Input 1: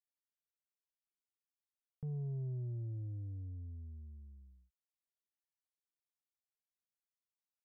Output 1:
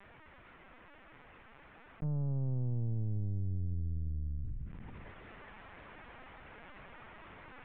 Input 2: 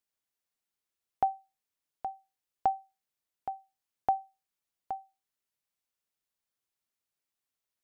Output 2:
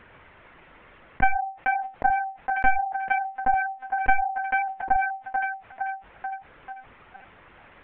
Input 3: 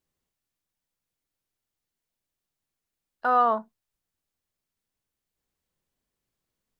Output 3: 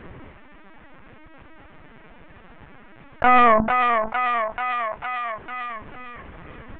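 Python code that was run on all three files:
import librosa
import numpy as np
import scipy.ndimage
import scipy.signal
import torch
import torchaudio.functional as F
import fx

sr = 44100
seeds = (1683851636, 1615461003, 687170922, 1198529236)

p1 = fx.tracing_dist(x, sr, depth_ms=0.39)
p2 = scipy.signal.sosfilt(scipy.signal.butter(4, 2200.0, 'lowpass', fs=sr, output='sos'), p1)
p3 = fx.rider(p2, sr, range_db=5, speed_s=0.5)
p4 = p2 + (p3 * librosa.db_to_amplitude(1.5))
p5 = fx.echo_thinned(p4, sr, ms=447, feedback_pct=39, hz=610.0, wet_db=-16.0)
p6 = fx.lpc_vocoder(p5, sr, seeds[0], excitation='pitch_kept', order=16)
y = fx.env_flatten(p6, sr, amount_pct=70)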